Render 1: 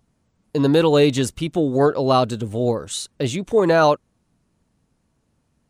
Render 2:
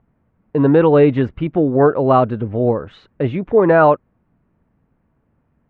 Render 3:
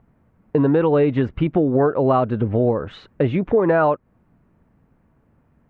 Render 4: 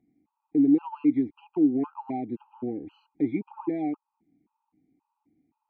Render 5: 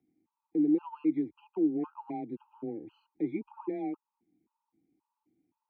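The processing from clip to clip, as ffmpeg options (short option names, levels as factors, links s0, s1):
-af "lowpass=f=2100:w=0.5412,lowpass=f=2100:w=1.3066,volume=1.58"
-af "acompressor=threshold=0.112:ratio=4,volume=1.58"
-filter_complex "[0:a]acontrast=64,asplit=3[s0][s1][s2];[s0]bandpass=f=300:t=q:w=8,volume=1[s3];[s1]bandpass=f=870:t=q:w=8,volume=0.501[s4];[s2]bandpass=f=2240:t=q:w=8,volume=0.355[s5];[s3][s4][s5]amix=inputs=3:normalize=0,afftfilt=real='re*gt(sin(2*PI*1.9*pts/sr)*(1-2*mod(floor(b*sr/1024/810),2)),0)':imag='im*gt(sin(2*PI*1.9*pts/sr)*(1-2*mod(floor(b*sr/1024/810),2)),0)':win_size=1024:overlap=0.75,volume=0.708"
-af "afreqshift=18,volume=0.501"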